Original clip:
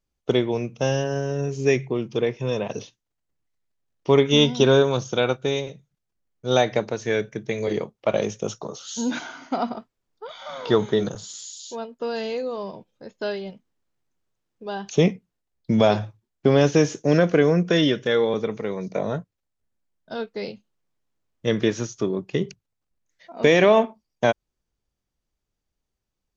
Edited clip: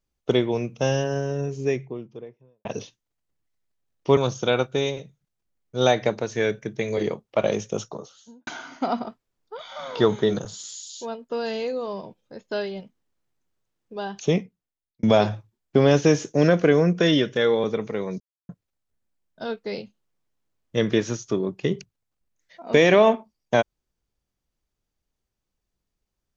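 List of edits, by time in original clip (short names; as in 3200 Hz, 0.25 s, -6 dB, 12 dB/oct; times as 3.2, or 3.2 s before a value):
1–2.65 studio fade out
4.17–4.87 cut
8.44–9.17 studio fade out
14.68–15.73 fade out
18.9–19.19 mute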